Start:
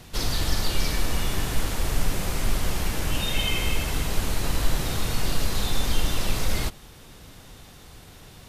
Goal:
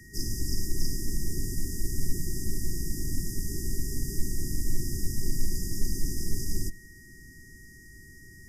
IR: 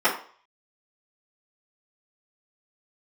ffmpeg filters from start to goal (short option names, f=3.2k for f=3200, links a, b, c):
-af "afftfilt=real='re*(1-between(b*sr/4096,430,4800))':imag='im*(1-between(b*sr/4096,430,4800))':win_size=4096:overlap=0.75,aeval=exprs='val(0)+0.00355*sin(2*PI*1900*n/s)':c=same,afreqshift=-18,volume=-3dB"